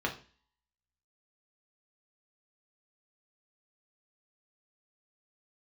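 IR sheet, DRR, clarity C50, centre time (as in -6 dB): 0.0 dB, 11.5 dB, 15 ms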